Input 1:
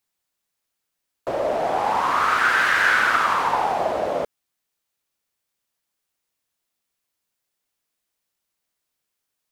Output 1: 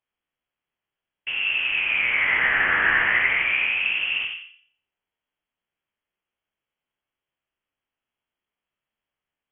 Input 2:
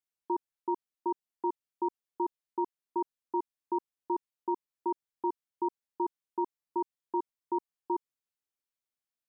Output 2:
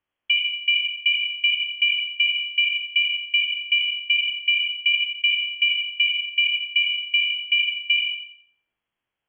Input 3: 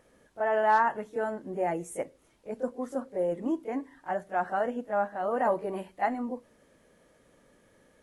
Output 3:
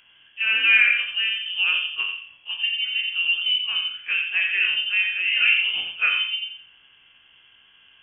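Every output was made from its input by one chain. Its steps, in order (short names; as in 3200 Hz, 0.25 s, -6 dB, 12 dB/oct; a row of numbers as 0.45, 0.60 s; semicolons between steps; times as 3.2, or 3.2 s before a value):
spectral trails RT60 0.37 s; de-hum 58.88 Hz, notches 39; on a send: darkening echo 88 ms, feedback 33%, low-pass 1300 Hz, level -4 dB; on the sum: inverted band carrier 3300 Hz; match loudness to -20 LUFS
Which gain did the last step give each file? -3.5, +13.0, +5.5 dB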